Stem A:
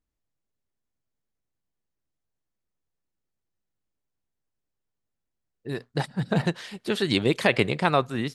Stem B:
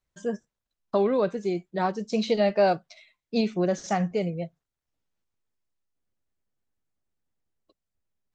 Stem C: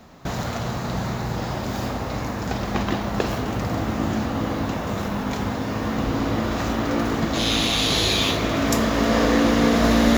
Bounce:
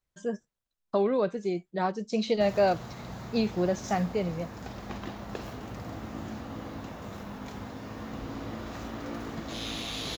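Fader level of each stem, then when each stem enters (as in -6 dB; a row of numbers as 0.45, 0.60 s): off, -2.5 dB, -14.5 dB; off, 0.00 s, 2.15 s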